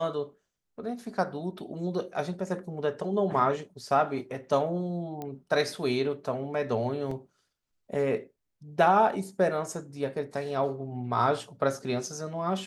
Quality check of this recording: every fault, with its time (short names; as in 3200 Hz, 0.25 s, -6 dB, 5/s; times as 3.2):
5.22 pop -23 dBFS
7.11 gap 3.7 ms